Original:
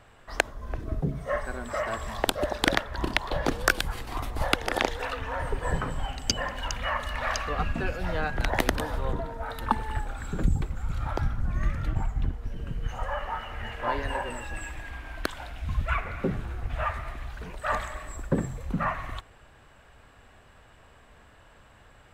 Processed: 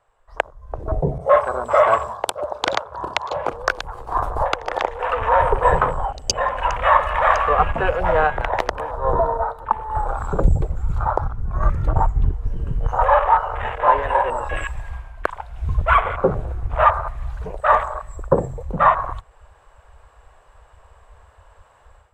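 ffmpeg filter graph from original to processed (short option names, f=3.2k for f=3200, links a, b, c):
-filter_complex "[0:a]asettb=1/sr,asplit=3[a][b][c];[a]atrim=end=1.184[d];[b]atrim=start=1.18:end=3.53,asetpts=PTS-STARTPTS,afade=t=in:d=0.004:c=qsin,afade=t=out:st=2.346:d=0.004:c=qsin,highpass=f=70:w=0.5412,highpass=f=70:w=1.3066,bandreject=f=1.8k:w=5.7,adynamicequalizer=threshold=0.00794:dfrequency=1700:dqfactor=0.7:tfrequency=1700:tqfactor=0.7:attack=5:release=100:ratio=0.375:range=2:mode=boostabove:tftype=highshelf[e];[c]atrim=start=3.526[f];[d][e]acrossfade=d=0.004:c1=hsin:c2=qsin[g];[g][f]acrossfade=d=0.004:c1=qsin:c2=hsin,afwtdn=0.0158,equalizer=f=250:t=o:w=1:g=-10,equalizer=f=500:t=o:w=1:g=9,equalizer=f=1k:t=o:w=1:g=11,equalizer=f=8k:t=o:w=1:g=7,dynaudnorm=f=180:g=3:m=12dB,volume=-1dB"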